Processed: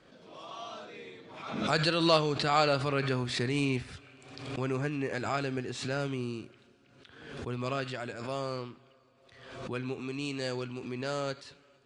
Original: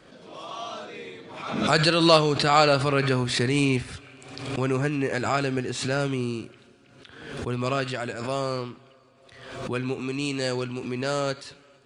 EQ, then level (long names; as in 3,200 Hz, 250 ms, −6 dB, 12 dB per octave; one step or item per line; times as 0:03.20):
high-frequency loss of the air 76 metres
high-shelf EQ 6,000 Hz +7 dB
−7.0 dB